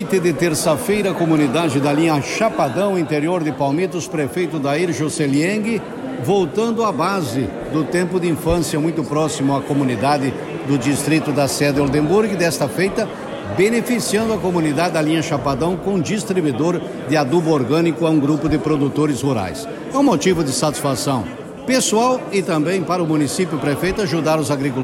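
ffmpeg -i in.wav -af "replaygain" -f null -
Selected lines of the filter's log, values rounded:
track_gain = -0.7 dB
track_peak = 0.434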